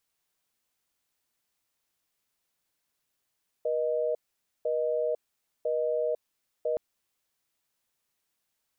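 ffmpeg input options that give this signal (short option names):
-f lavfi -i "aevalsrc='0.0398*(sin(2*PI*480*t)+sin(2*PI*620*t))*clip(min(mod(t,1),0.5-mod(t,1))/0.005,0,1)':d=3.12:s=44100"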